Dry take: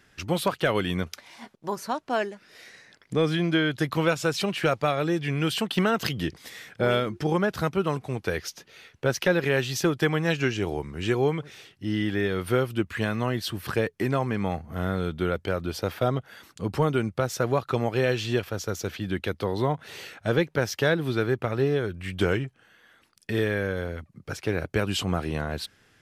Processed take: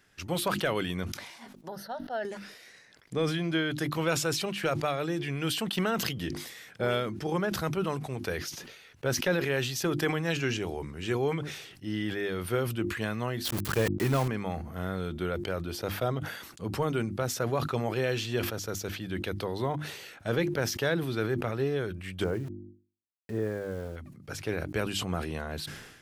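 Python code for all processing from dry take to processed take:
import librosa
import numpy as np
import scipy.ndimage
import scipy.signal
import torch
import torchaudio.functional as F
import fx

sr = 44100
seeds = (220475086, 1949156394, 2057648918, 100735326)

y = fx.chain(x, sr, fx.high_shelf(hz=2200.0, db=-7.5),
    fx.fixed_phaser(hz=1600.0, stages=8), at=(1.68, 2.25))
y = fx.chain(y, sr, fx.low_shelf(hz=120.0, db=8.0),
    fx.sample_gate(floor_db=-31.0),
    fx.leveller(passes=1), at=(13.45, 14.28))
y = fx.chain(y, sr, fx.lowpass(hz=1000.0, slope=12),
    fx.sample_gate(floor_db=-43.0), at=(22.24, 23.96))
y = fx.high_shelf(y, sr, hz=7100.0, db=5.0)
y = fx.hum_notches(y, sr, base_hz=50, count=7)
y = fx.sustainer(y, sr, db_per_s=55.0)
y = y * librosa.db_to_amplitude(-5.5)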